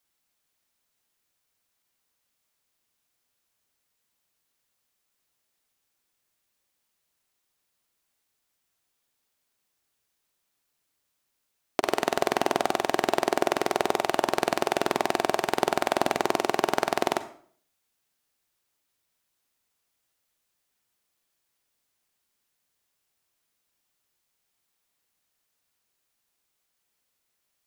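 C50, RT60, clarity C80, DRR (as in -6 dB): 12.5 dB, 0.55 s, 16.5 dB, 11.5 dB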